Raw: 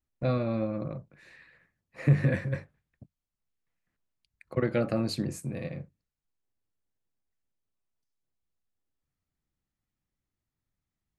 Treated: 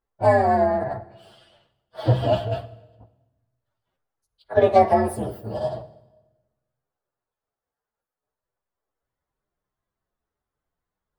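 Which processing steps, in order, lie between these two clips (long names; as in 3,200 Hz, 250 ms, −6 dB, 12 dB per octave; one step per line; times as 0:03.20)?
partials spread apart or drawn together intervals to 128%
flat-topped bell 830 Hz +13 dB 2.4 octaves
convolution reverb RT60 1.1 s, pre-delay 43 ms, DRR 15.5 dB
level +3.5 dB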